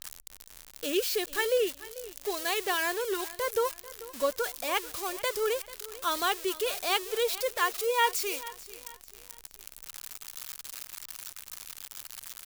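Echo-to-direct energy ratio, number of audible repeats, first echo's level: -17.0 dB, 2, -17.5 dB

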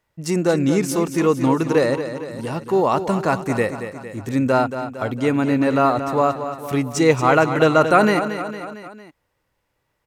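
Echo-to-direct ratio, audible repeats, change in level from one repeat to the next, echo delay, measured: -8.5 dB, 4, -5.0 dB, 228 ms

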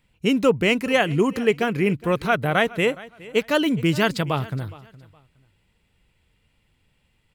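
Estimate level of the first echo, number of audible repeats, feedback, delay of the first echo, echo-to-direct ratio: -20.0 dB, 2, 25%, 416 ms, -19.5 dB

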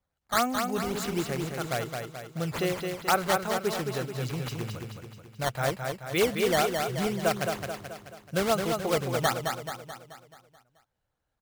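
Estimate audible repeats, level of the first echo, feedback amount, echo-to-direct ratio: 6, -5.0 dB, 52%, -3.5 dB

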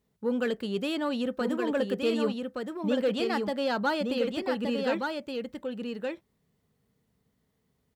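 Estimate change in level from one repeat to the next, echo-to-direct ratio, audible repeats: no regular repeats, -4.5 dB, 1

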